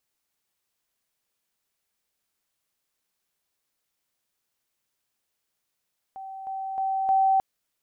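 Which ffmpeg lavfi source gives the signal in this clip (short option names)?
-f lavfi -i "aevalsrc='pow(10,(-35.5+6*floor(t/0.31))/20)*sin(2*PI*771*t)':d=1.24:s=44100"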